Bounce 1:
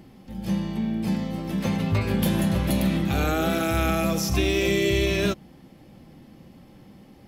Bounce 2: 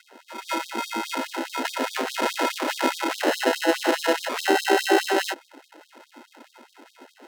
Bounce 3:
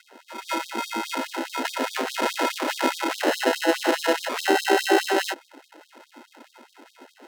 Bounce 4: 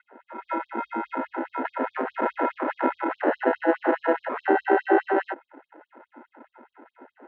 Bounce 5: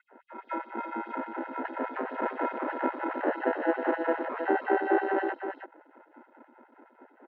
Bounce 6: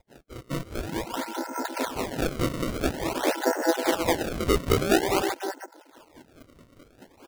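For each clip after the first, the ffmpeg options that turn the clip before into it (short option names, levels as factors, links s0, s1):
-af "acrusher=samples=38:mix=1:aa=0.000001,aemphasis=mode=reproduction:type=cd,afftfilt=real='re*gte(b*sr/1024,220*pow(3400/220,0.5+0.5*sin(2*PI*4.8*pts/sr)))':imag='im*gte(b*sr/1024,220*pow(3400/220,0.5+0.5*sin(2*PI*4.8*pts/sr)))':win_size=1024:overlap=0.75,volume=2.51"
-af "bandreject=f=50:t=h:w=6,bandreject=f=100:t=h:w=6"
-af "lowpass=f=1700:w=0.5412,lowpass=f=1700:w=1.3066"
-af "aecho=1:1:318:0.447,volume=0.531"
-af "acrusher=samples=30:mix=1:aa=0.000001:lfo=1:lforange=48:lforate=0.49,volume=1.5"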